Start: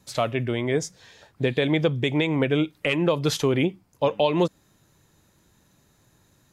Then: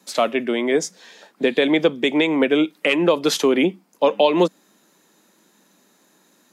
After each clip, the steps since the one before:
Butterworth high-pass 190 Hz 48 dB per octave
level +5.5 dB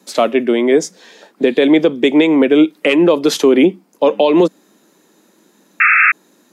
parametric band 340 Hz +6.5 dB 1.6 octaves
sound drawn into the spectrogram noise, 0:05.80–0:06.12, 1,200–2,700 Hz −6 dBFS
boost into a limiter +3.5 dB
level −1 dB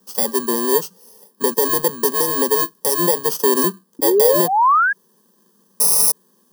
samples in bit-reversed order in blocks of 32 samples
sound drawn into the spectrogram rise, 0:03.99–0:04.93, 290–1,700 Hz −9 dBFS
phaser with its sweep stopped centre 450 Hz, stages 8
level −3.5 dB

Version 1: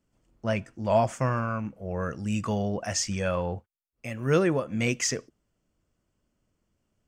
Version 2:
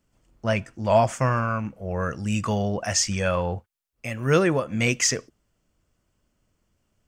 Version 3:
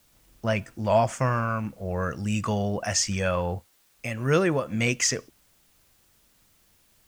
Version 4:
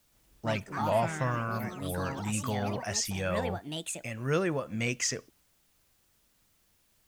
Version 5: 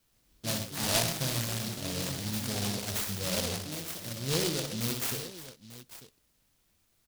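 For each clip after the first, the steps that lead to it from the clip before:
parametric band 280 Hz −4 dB 2.5 octaves; level +6 dB
in parallel at −3 dB: downward compressor, threshold −31 dBFS, peak gain reduction 16.5 dB; on the sum: bit-depth reduction 10 bits, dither triangular; level −3.5 dB
delay with pitch and tempo change per echo 118 ms, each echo +5 semitones, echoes 3, each echo −6 dB; level −6.5 dB
on a send: multi-tap delay 60/124/361/895 ms −6/−10.5/−15.5/−15 dB; on the sum: short delay modulated by noise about 4,200 Hz, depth 0.29 ms; level −2.5 dB

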